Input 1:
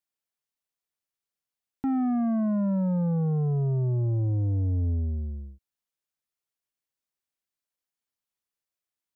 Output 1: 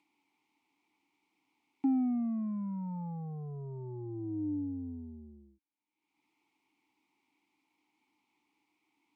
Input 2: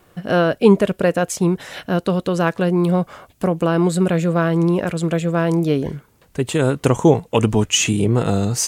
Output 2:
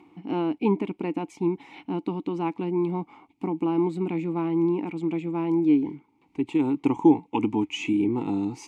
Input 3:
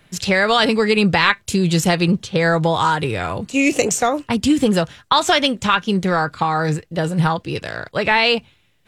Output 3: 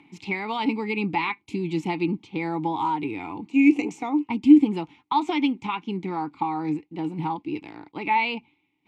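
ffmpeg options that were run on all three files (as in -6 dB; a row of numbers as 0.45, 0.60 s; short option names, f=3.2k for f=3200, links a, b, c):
-filter_complex "[0:a]acompressor=mode=upward:threshold=-38dB:ratio=2.5,asplit=3[a][b][c];[a]bandpass=f=300:t=q:w=8,volume=0dB[d];[b]bandpass=f=870:t=q:w=8,volume=-6dB[e];[c]bandpass=f=2.24k:t=q:w=8,volume=-9dB[f];[d][e][f]amix=inputs=3:normalize=0,volume=4.5dB"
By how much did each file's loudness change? -9.5, -8.0, -7.0 LU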